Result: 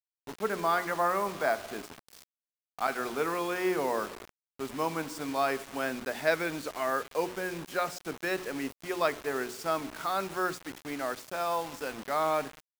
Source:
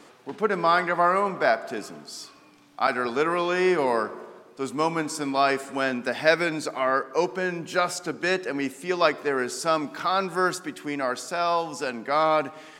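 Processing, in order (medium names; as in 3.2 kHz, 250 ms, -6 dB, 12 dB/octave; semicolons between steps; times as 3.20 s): treble shelf 5.1 kHz -9 dB; hum notches 60/120/180/240/300/360/420 Hz; bit crusher 6-bit; trim -6.5 dB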